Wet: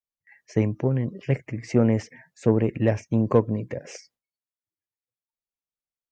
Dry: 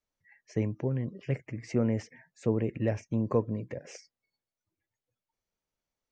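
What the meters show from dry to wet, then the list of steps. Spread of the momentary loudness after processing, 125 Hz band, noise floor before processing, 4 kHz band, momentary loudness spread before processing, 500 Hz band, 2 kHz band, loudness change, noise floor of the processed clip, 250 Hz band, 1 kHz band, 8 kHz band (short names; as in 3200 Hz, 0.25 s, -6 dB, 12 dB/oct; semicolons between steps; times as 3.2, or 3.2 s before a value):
11 LU, +7.0 dB, under -85 dBFS, +7.0 dB, 13 LU, +7.5 dB, +7.5 dB, +7.5 dB, under -85 dBFS, +7.5 dB, +8.5 dB, n/a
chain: gate with hold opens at -56 dBFS; added harmonics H 7 -32 dB, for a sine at -12.5 dBFS; gain +8 dB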